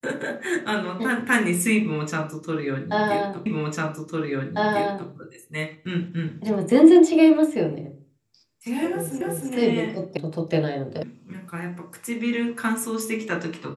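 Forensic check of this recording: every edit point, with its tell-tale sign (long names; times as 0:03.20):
0:03.46: the same again, the last 1.65 s
0:09.21: the same again, the last 0.31 s
0:10.17: cut off before it has died away
0:11.03: cut off before it has died away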